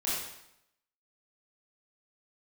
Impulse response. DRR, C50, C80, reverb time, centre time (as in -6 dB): -9.0 dB, -1.5 dB, 2.5 dB, 0.80 s, 73 ms